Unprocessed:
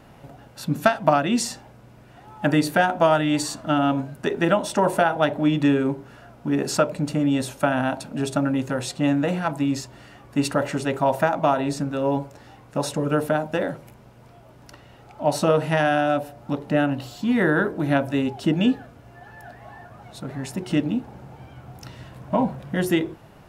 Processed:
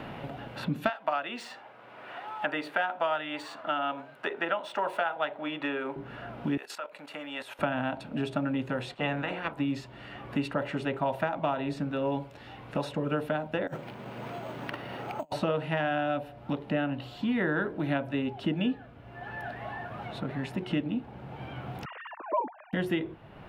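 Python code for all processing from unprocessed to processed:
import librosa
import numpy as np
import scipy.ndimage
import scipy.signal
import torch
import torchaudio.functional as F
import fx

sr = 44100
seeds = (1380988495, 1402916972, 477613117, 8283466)

y = fx.chain(x, sr, fx.median_filter(points=3),
    fx.highpass(hz=590.0, slope=12),
    fx.peak_eq(hz=1300.0, db=2.5, octaves=0.36), at=(0.89, 5.96))
y = fx.chain(y, sr, fx.level_steps(step_db=14),
    fx.highpass(hz=890.0, slope=12),
    fx.high_shelf(hz=6800.0, db=11.5), at=(6.57, 7.59))
y = fx.spec_clip(y, sr, under_db=18, at=(8.93, 9.57), fade=0.02)
y = fx.hum_notches(y, sr, base_hz=60, count=2, at=(8.93, 9.57), fade=0.02)
y = fx.upward_expand(y, sr, threshold_db=-33.0, expansion=1.5, at=(8.93, 9.57), fade=0.02)
y = fx.chain(y, sr, fx.highpass(hz=150.0, slope=12),
    fx.over_compress(threshold_db=-35.0, ratio=-0.5),
    fx.resample_bad(factor=6, down='none', up='hold'), at=(13.67, 15.32))
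y = fx.chain(y, sr, fx.sine_speech(),
    fx.cabinet(low_hz=380.0, low_slope=12, high_hz=2600.0, hz=(490.0, 1100.0, 2200.0), db=(-4, 3, -3)), at=(21.85, 22.73))
y = fx.high_shelf_res(y, sr, hz=4500.0, db=-12.5, q=1.5)
y = fx.band_squash(y, sr, depth_pct=70)
y = y * 10.0 ** (-8.0 / 20.0)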